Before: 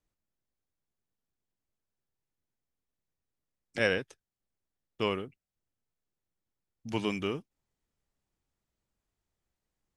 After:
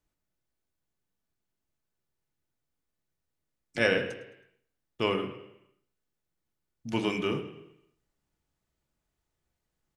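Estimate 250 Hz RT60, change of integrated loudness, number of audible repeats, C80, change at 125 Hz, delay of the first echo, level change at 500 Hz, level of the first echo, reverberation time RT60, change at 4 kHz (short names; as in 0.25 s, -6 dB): 0.85 s, +2.5 dB, 2, 11.5 dB, +2.0 dB, 0.107 s, +3.0 dB, -16.5 dB, 0.85 s, +3.0 dB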